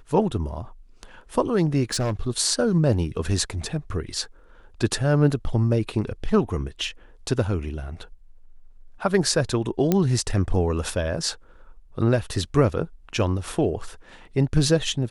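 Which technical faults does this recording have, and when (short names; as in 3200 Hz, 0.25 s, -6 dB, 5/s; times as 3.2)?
1.93–2.22 clipped -20 dBFS
9.92 pop -7 dBFS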